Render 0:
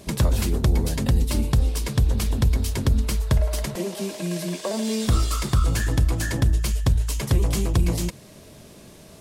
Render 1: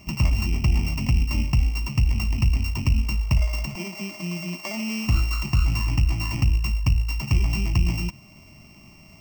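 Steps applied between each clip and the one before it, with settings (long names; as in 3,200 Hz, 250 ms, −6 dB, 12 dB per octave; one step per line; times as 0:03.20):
samples sorted by size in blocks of 16 samples
phaser with its sweep stopped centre 2,400 Hz, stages 8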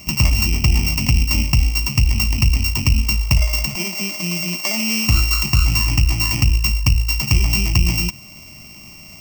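high-shelf EQ 2,900 Hz +12 dB
level +4.5 dB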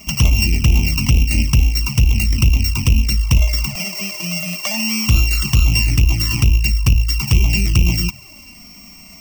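wave folding −8 dBFS
flanger swept by the level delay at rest 5 ms, full sweep at −11.5 dBFS
level +3 dB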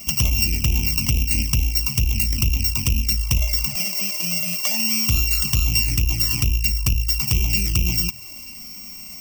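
high-shelf EQ 5,200 Hz +12 dB
in parallel at +1.5 dB: downward compressor, threshold −18 dBFS, peak gain reduction 12 dB
on the sum: level −10.5 dB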